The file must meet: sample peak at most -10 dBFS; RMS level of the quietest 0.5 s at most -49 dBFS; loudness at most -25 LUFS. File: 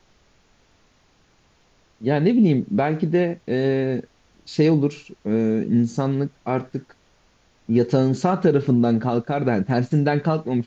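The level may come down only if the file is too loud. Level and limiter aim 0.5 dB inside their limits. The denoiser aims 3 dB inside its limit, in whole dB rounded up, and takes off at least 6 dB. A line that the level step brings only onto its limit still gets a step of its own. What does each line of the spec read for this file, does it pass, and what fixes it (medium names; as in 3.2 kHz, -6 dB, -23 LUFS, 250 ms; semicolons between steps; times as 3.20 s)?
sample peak -5.0 dBFS: fail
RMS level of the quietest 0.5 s -60 dBFS: pass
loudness -21.0 LUFS: fail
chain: trim -4.5 dB; peak limiter -10.5 dBFS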